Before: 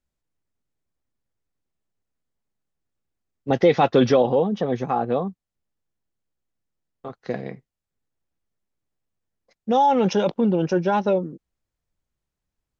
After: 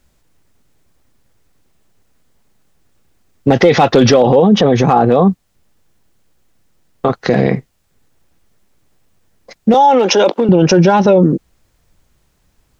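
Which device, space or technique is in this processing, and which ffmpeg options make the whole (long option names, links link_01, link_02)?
loud club master: -filter_complex "[0:a]acompressor=threshold=-20dB:ratio=2.5,asoftclip=type=hard:threshold=-14.5dB,alimiter=level_in=25.5dB:limit=-1dB:release=50:level=0:latency=1,asettb=1/sr,asplit=3[link_01][link_02][link_03];[link_01]atrim=end=9.744[link_04];[link_02]atrim=start=9.74:end=10.49,asetpts=PTS-STARTPTS,afade=type=in:duration=0.004:curve=qsin,afade=type=out:start_time=0.746:duration=0.004:curve=qsin,highpass=frequency=280:width=0.5412,highpass=frequency=280:width=1.3066[link_05];[link_03]atrim=start=10.486[link_06];[link_04][link_05]acrossfade=duration=0.004:curve1=hsin:curve2=qsin[link_07];[link_07][link_06]acrossfade=duration=0.004:curve1=qsin:curve2=hsin,volume=-1dB"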